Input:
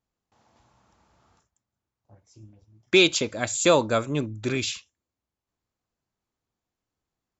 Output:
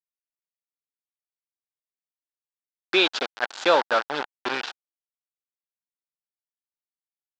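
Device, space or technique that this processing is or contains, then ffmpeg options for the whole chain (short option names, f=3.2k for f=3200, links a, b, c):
hand-held game console: -filter_complex "[0:a]asettb=1/sr,asplit=3[a][b][c];[a]atrim=end=4.124[d];[b]atrim=start=4.12:end=4.55,asetpts=PTS-STARTPTS,afade=t=in:d=0.004:c=qsin,afade=t=out:st=0.426:d=0.004:c=qsin,highpass=f=43:w=0.5412,highpass=f=43:w=1.3066[e];[c]atrim=start=4.546[f];[d][e]acrossfade=d=0.004:c1=hsin:c2=qsin[g];[g][f]acrossfade=d=0.004:c1=qsin:c2=hsin,acrusher=bits=3:mix=0:aa=0.000001,highpass=440,equalizer=f=830:t=q:w=4:g=6,equalizer=f=1.5k:t=q:w=4:g=8,equalizer=f=2.2k:t=q:w=4:g=-4,lowpass=f=4.5k:w=0.5412,lowpass=f=4.5k:w=1.3066"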